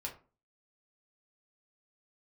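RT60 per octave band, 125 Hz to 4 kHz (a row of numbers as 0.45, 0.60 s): 0.40, 0.45, 0.40, 0.35, 0.30, 0.20 s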